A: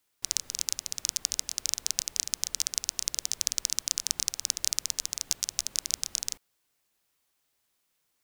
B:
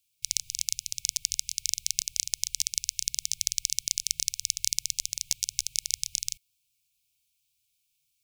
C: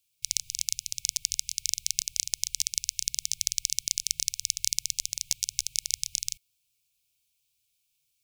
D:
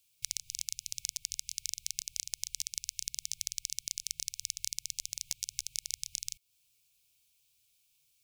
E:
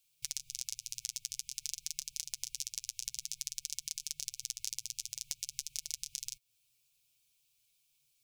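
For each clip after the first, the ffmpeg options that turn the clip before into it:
-af "afftfilt=real='re*(1-between(b*sr/4096,160,2200))':imag='im*(1-between(b*sr/4096,160,2200))':win_size=4096:overlap=0.75,volume=1.12"
-af "equalizer=f=460:t=o:w=0.71:g=10"
-af "acompressor=threshold=0.0126:ratio=3,volume=1.5"
-af "flanger=delay=6.3:depth=2.1:regen=26:speed=0.52:shape=sinusoidal,volume=1.12"

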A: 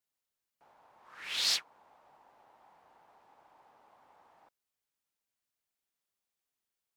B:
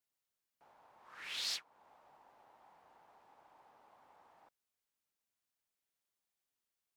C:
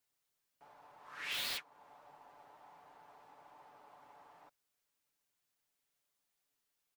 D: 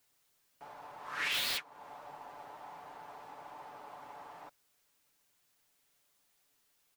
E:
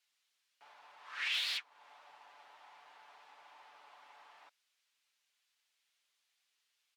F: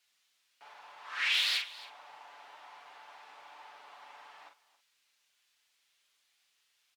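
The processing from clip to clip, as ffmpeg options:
-af "acompressor=threshold=0.00501:ratio=1.5,volume=0.794"
-filter_complex "[0:a]aecho=1:1:6.9:0.5,acrossover=split=3900[s0][s1];[s1]aeval=exprs='(mod(158*val(0)+1,2)-1)/158':c=same[s2];[s0][s2]amix=inputs=2:normalize=0,volume=1.58"
-af "alimiter=level_in=3.16:limit=0.0631:level=0:latency=1:release=303,volume=0.316,volume=3.35"
-af "bandpass=f=3100:t=q:w=1:csg=0"
-filter_complex "[0:a]asplit=2[s0][s1];[s1]adelay=42,volume=0.501[s2];[s0][s2]amix=inputs=2:normalize=0,aecho=1:1:276:0.119,volume=1.88"

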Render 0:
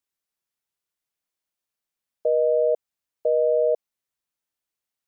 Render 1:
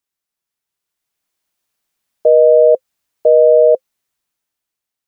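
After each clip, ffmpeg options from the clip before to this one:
-af "bandreject=f=520:w=13,dynaudnorm=f=320:g=7:m=3.16,volume=1.41"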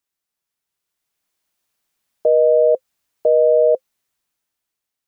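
-af "alimiter=limit=0.447:level=0:latency=1:release=32"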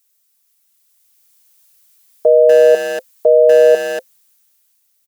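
-filter_complex "[0:a]aecho=1:1:4.5:0.35,asplit=2[s0][s1];[s1]adelay=240,highpass=300,lowpass=3400,asoftclip=type=hard:threshold=0.188,volume=0.447[s2];[s0][s2]amix=inputs=2:normalize=0,crystalizer=i=5.5:c=0,volume=1.26"

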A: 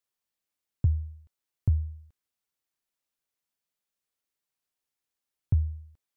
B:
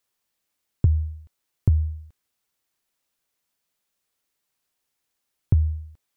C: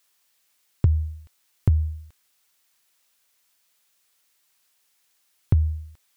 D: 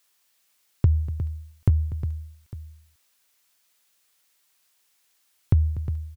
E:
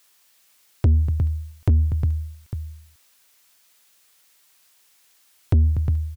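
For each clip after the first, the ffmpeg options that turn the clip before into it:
-af "acompressor=threshold=0.0708:ratio=6,volume=2.82"
-af "tiltshelf=f=740:g=-6,volume=1.88"
-af "aecho=1:1:243|358|853:0.15|0.266|0.112"
-af "asoftclip=type=tanh:threshold=0.1,volume=2.51"

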